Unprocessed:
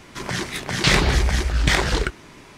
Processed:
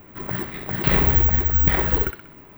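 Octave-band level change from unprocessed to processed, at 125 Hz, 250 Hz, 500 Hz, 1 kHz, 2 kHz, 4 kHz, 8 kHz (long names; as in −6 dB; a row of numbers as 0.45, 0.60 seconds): −0.5 dB, −1.0 dB, −1.5 dB, −3.5 dB, −6.5 dB, −13.5 dB, below −25 dB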